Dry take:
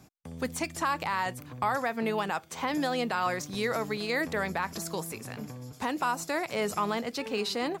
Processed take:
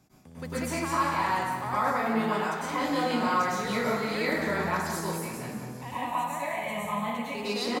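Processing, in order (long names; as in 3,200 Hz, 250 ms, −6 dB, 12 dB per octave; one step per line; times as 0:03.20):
0:05.81–0:07.35: phaser with its sweep stopped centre 1,400 Hz, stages 6
on a send: repeating echo 181 ms, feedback 55%, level −10.5 dB
on the sum: dense smooth reverb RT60 1 s, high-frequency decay 0.6×, pre-delay 90 ms, DRR −10 dB
level −8.5 dB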